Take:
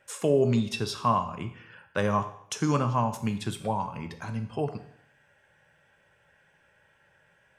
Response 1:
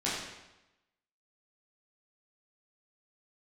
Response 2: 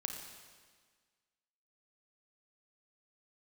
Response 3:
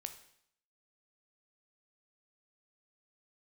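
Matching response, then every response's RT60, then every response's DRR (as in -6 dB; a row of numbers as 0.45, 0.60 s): 3; 0.95, 1.6, 0.65 s; -9.0, 2.5, 7.5 dB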